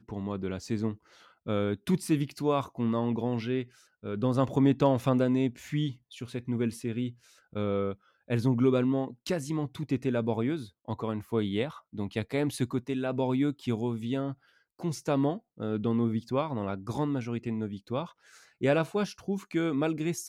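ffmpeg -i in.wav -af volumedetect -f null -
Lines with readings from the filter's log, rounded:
mean_volume: -30.0 dB
max_volume: -12.3 dB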